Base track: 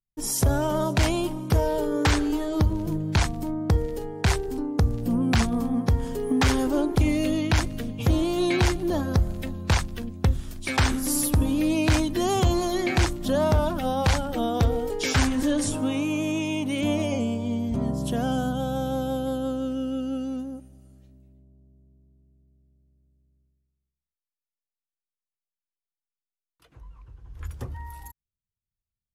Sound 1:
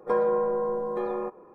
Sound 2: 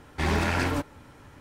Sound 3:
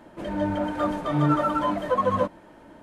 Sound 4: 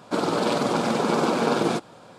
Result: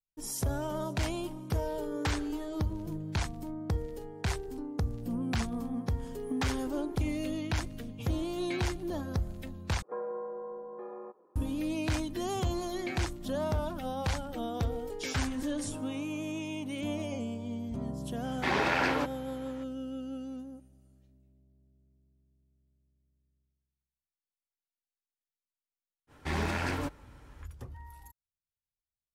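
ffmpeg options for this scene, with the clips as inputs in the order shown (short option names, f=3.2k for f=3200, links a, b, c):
-filter_complex "[2:a]asplit=2[a][b];[0:a]volume=-10dB[c];[1:a]acrossover=split=180 2100:gain=0.0891 1 0.0891[d][e][f];[d][e][f]amix=inputs=3:normalize=0[g];[a]acrossover=split=290 5600:gain=0.0794 1 0.178[h][i][j];[h][i][j]amix=inputs=3:normalize=0[k];[c]asplit=2[l][m];[l]atrim=end=9.824[n];[g]atrim=end=1.54,asetpts=PTS-STARTPTS,volume=-13dB[o];[m]atrim=start=11.356[p];[k]atrim=end=1.4,asetpts=PTS-STARTPTS,afade=t=in:d=0.004:c=hsin,afade=t=out:st=1.396:d=0.004:c=hsin,adelay=18240[q];[b]atrim=end=1.4,asetpts=PTS-STARTPTS,volume=-6.5dB,afade=t=in:d=0.05,afade=t=out:st=1.35:d=0.05,adelay=26070[r];[n][o]acrossfade=d=0.004:c1=hsin:c2=hsin[s];[s][p]acrossfade=d=0.004:c1=hsin:c2=hsin[t];[t][q][r]amix=inputs=3:normalize=0"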